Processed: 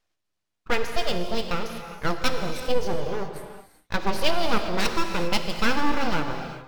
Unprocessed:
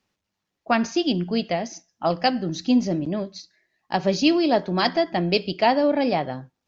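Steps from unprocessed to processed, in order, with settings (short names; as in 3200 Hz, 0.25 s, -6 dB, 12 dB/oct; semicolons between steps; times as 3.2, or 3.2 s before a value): full-wave rectifier; non-linear reverb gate 0.43 s flat, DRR 5.5 dB; decimation joined by straight lines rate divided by 2×; gain -1 dB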